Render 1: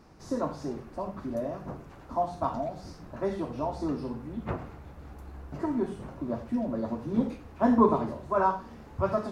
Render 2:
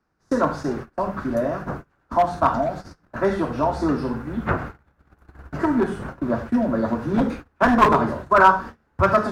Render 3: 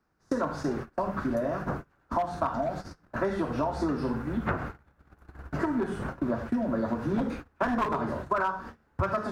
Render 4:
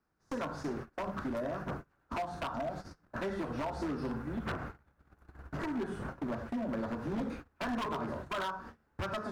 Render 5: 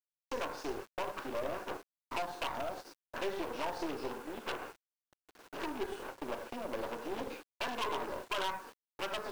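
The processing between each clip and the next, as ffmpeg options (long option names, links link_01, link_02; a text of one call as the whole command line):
ffmpeg -i in.wav -filter_complex "[0:a]equalizer=frequency=1500:width=2.2:gain=11,agate=range=-28dB:threshold=-40dB:ratio=16:detection=peak,acrossover=split=100|890|1300[link_01][link_02][link_03][link_04];[link_02]aeval=exprs='0.0794*(abs(mod(val(0)/0.0794+3,4)-2)-1)':channel_layout=same[link_05];[link_01][link_05][link_03][link_04]amix=inputs=4:normalize=0,volume=9dB" out.wav
ffmpeg -i in.wav -af "acompressor=threshold=-23dB:ratio=10,volume=-1.5dB" out.wav
ffmpeg -i in.wav -af "aeval=exprs='0.0668*(abs(mod(val(0)/0.0668+3,4)-2)-1)':channel_layout=same,volume=-6dB" out.wav
ffmpeg -i in.wav -af "highpass=frequency=370:width=0.5412,highpass=frequency=370:width=1.3066,equalizer=frequency=660:width_type=q:width=4:gain=-6,equalizer=frequency=1300:width_type=q:width=4:gain=-8,equalizer=frequency=1900:width_type=q:width=4:gain=-7,equalizer=frequency=2800:width_type=q:width=4:gain=5,equalizer=frequency=7400:width_type=q:width=4:gain=-5,lowpass=frequency=9200:width=0.5412,lowpass=frequency=9200:width=1.3066,acrusher=bits=9:mix=0:aa=0.000001,aeval=exprs='0.0501*(cos(1*acos(clip(val(0)/0.0501,-1,1)))-cos(1*PI/2))+0.00501*(cos(8*acos(clip(val(0)/0.0501,-1,1)))-cos(8*PI/2))':channel_layout=same,volume=3dB" out.wav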